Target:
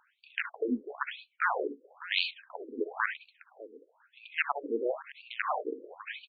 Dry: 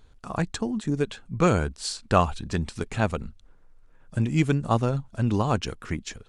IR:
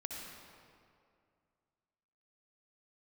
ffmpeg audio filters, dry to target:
-filter_complex "[0:a]lowpass=4800,highshelf=frequency=3800:gain=-7,asplit=2[link_01][link_02];[link_02]acompressor=threshold=-31dB:ratio=10,volume=0.5dB[link_03];[link_01][link_03]amix=inputs=2:normalize=0,aeval=exprs='(mod(3.55*val(0)+1,2)-1)/3.55':channel_layout=same,aecho=1:1:601:0.158[link_04];[1:a]atrim=start_sample=2205,atrim=end_sample=3528[link_05];[link_04][link_05]afir=irnorm=-1:irlink=0,afftfilt=real='re*between(b*sr/1024,340*pow(3300/340,0.5+0.5*sin(2*PI*1*pts/sr))/1.41,340*pow(3300/340,0.5+0.5*sin(2*PI*1*pts/sr))*1.41)':imag='im*between(b*sr/1024,340*pow(3300/340,0.5+0.5*sin(2*PI*1*pts/sr))/1.41,340*pow(3300/340,0.5+0.5*sin(2*PI*1*pts/sr))*1.41)':win_size=1024:overlap=0.75,volume=3dB"

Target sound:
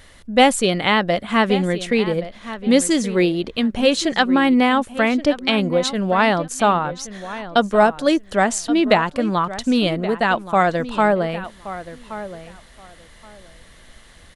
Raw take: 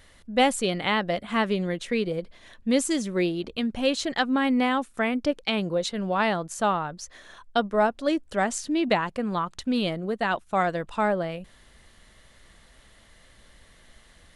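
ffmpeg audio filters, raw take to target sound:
ffmpeg -i in.wav -filter_complex "[0:a]asettb=1/sr,asplit=3[link_01][link_02][link_03];[link_01]atrim=end=7.644[link_04];[link_02]atrim=start=7.64:end=8.27,asetpts=PTS-STARTPTS,afade=type=in:duration=0.004:curve=qsin,afade=type=out:start_time=0.626:duration=0.004:curve=qsin,highshelf=frequency=5300:gain=6.5[link_05];[link_03]atrim=start=8.266[link_06];[link_04][link_05]acrossfade=duration=0.004:curve1=hsin:curve2=qsin[link_07];[link_07][link_06]acrossfade=duration=0.004:curve1=qsin:curve2=hsin,asplit=2[link_08][link_09];[link_09]adelay=1124,lowpass=frequency=4500:poles=1,volume=-14dB,asplit=2[link_10][link_11];[link_11]adelay=1124,lowpass=frequency=4500:poles=1,volume=0.18[link_12];[link_08][link_10][link_12]amix=inputs=3:normalize=0,volume=7.5dB" out.wav

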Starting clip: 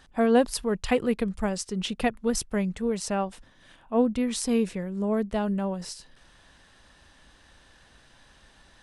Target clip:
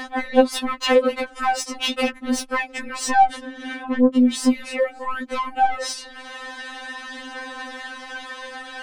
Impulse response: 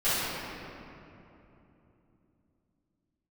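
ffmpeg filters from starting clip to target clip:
-filter_complex "[0:a]asettb=1/sr,asplit=3[link_01][link_02][link_03];[link_01]atrim=end=3.104[link_04];[link_02]atrim=start=3.1:end=4.52,asetpts=PTS-STARTPTS,afade=type=in:duration=0.004:curve=qsin,afade=type=out:start_time=1.416:duration=0.004:curve=qsin,equalizer=frequency=270:width_type=o:width=0.94:gain=14.5[link_05];[link_03]atrim=start=4.516[link_06];[link_04][link_05]acrossfade=duration=0.004:curve1=hsin:curve2=qsin[link_07];[link_07][link_06]acrossfade=duration=0.004:curve1=qsin:curve2=hsin,acompressor=threshold=-23dB:ratio=8,acrossover=split=420|1000[link_08][link_09][link_10];[link_08]alimiter=level_in=6dB:limit=-24dB:level=0:latency=1,volume=-6dB[link_11];[link_11][link_09][link_10]amix=inputs=3:normalize=0,acompressor=mode=upward:threshold=-42dB:ratio=2.5,flanger=delay=3.6:depth=2.9:regen=53:speed=0.4:shape=triangular,asplit=2[link_12][link_13];[link_13]highpass=frequency=720:poles=1,volume=31dB,asoftclip=type=tanh:threshold=-8dB[link_14];[link_12][link_14]amix=inputs=2:normalize=0,lowpass=frequency=1600:poles=1,volume=-6dB,afftfilt=real='re*3.46*eq(mod(b,12),0)':imag='im*3.46*eq(mod(b,12),0)':win_size=2048:overlap=0.75,volume=4dB"

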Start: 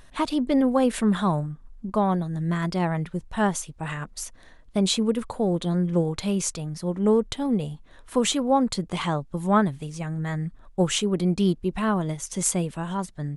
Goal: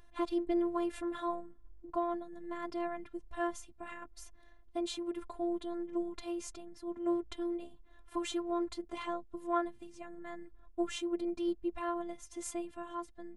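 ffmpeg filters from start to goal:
ffmpeg -i in.wav -af "highshelf=frequency=3100:gain=-11,afftfilt=real='hypot(re,im)*cos(PI*b)':imag='0':win_size=512:overlap=0.75,volume=-6dB" out.wav

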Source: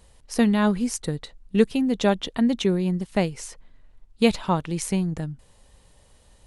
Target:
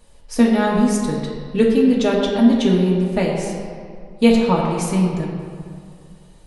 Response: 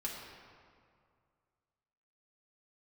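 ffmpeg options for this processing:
-filter_complex "[0:a]equalizer=frequency=470:width_type=o:width=1.1:gain=3[link_01];[1:a]atrim=start_sample=2205[link_02];[link_01][link_02]afir=irnorm=-1:irlink=0,volume=3dB"

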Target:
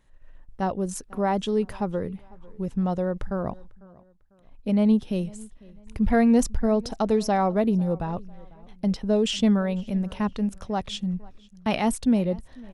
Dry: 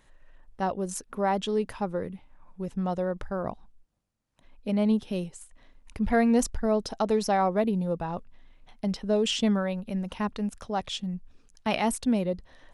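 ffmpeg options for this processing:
ffmpeg -i in.wav -filter_complex "[0:a]agate=range=-7dB:threshold=-51dB:ratio=16:detection=peak,lowshelf=frequency=290:gain=7,asplit=2[link_01][link_02];[link_02]adelay=498,lowpass=frequency=4300:poles=1,volume=-23dB,asplit=2[link_03][link_04];[link_04]adelay=498,lowpass=frequency=4300:poles=1,volume=0.35[link_05];[link_01][link_03][link_05]amix=inputs=3:normalize=0" out.wav

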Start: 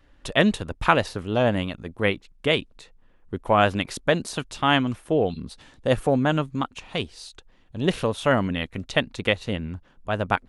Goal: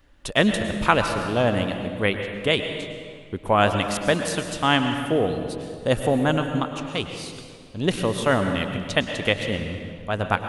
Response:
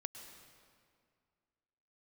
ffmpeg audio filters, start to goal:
-filter_complex "[0:a]highshelf=frequency=7000:gain=8.5[link_01];[1:a]atrim=start_sample=2205[link_02];[link_01][link_02]afir=irnorm=-1:irlink=0,volume=3.5dB"

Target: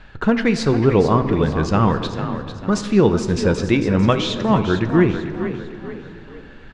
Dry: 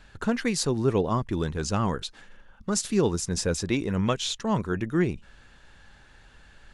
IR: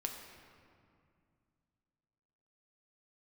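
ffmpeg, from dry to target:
-filter_complex "[0:a]lowpass=3300,asplit=5[link_01][link_02][link_03][link_04][link_05];[link_02]adelay=448,afreqshift=36,volume=-10dB[link_06];[link_03]adelay=896,afreqshift=72,volume=-18.4dB[link_07];[link_04]adelay=1344,afreqshift=108,volume=-26.8dB[link_08];[link_05]adelay=1792,afreqshift=144,volume=-35.2dB[link_09];[link_01][link_06][link_07][link_08][link_09]amix=inputs=5:normalize=0,asplit=2[link_10][link_11];[1:a]atrim=start_sample=2205[link_12];[link_11][link_12]afir=irnorm=-1:irlink=0,volume=0dB[link_13];[link_10][link_13]amix=inputs=2:normalize=0,volume=3.5dB"

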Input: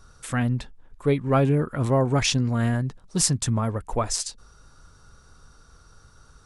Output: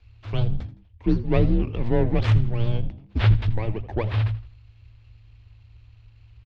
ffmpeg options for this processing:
ffmpeg -i in.wav -filter_complex "[0:a]acrossover=split=120|990[link_01][link_02][link_03];[link_01]highpass=47[link_04];[link_02]agate=range=-33dB:threshold=-52dB:ratio=3:detection=peak[link_05];[link_03]aeval=exprs='abs(val(0))':channel_layout=same[link_06];[link_04][link_05][link_06]amix=inputs=3:normalize=0,lowpass=frequency=3900:width=0.5412,lowpass=frequency=3900:width=1.3066,lowshelf=frequency=76:gain=9.5,asplit=4[link_07][link_08][link_09][link_10];[link_08]adelay=82,afreqshift=60,volume=-17dB[link_11];[link_09]adelay=164,afreqshift=120,volume=-25.2dB[link_12];[link_10]adelay=246,afreqshift=180,volume=-33.4dB[link_13];[link_07][link_11][link_12][link_13]amix=inputs=4:normalize=0,afreqshift=-110" out.wav

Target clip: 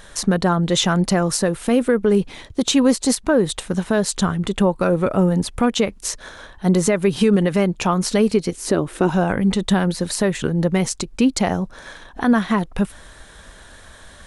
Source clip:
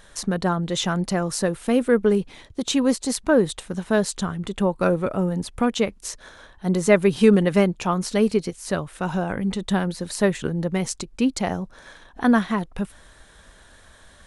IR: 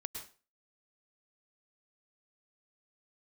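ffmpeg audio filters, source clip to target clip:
-filter_complex "[0:a]asettb=1/sr,asplit=3[link_01][link_02][link_03];[link_01]atrim=end=8.524[link_04];[link_02]atrim=start=8.52:end=9.1,asetpts=PTS-STARTPTS,afade=type=in:duration=0.004:curve=qsin,afade=type=out:start_time=0.576:duration=0.004:curve=qsin,equalizer=frequency=340:width_type=o:width=0.92:gain=14[link_05];[link_03]atrim=start=9.096[link_06];[link_04][link_05]acrossfade=duration=0.004:curve1=hsin:curve2=qsin[link_07];[link_07][link_06]acrossfade=duration=0.004:curve1=qsin:curve2=hsin,alimiter=limit=-14dB:level=0:latency=1:release=169,volume=7dB"

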